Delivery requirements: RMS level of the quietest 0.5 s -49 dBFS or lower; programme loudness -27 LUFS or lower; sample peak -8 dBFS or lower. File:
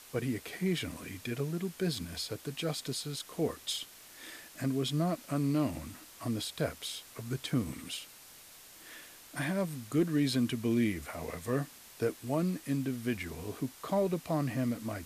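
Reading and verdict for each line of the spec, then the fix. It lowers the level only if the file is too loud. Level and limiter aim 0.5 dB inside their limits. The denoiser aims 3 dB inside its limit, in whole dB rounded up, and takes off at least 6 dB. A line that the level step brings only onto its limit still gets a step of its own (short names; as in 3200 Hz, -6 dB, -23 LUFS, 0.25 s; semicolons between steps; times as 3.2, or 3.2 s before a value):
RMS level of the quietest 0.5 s -54 dBFS: OK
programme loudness -34.5 LUFS: OK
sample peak -17.5 dBFS: OK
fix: none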